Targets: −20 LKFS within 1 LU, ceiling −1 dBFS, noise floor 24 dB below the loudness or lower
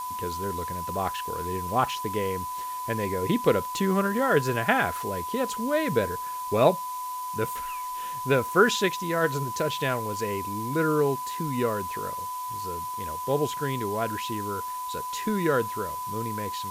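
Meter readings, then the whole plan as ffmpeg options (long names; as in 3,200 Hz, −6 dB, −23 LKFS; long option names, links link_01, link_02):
interfering tone 1,000 Hz; level of the tone −31 dBFS; background noise floor −34 dBFS; target noise floor −52 dBFS; integrated loudness −27.5 LKFS; sample peak −6.0 dBFS; target loudness −20.0 LKFS
→ -af "bandreject=frequency=1000:width=30"
-af "afftdn=noise_reduction=18:noise_floor=-34"
-af "volume=7.5dB,alimiter=limit=-1dB:level=0:latency=1"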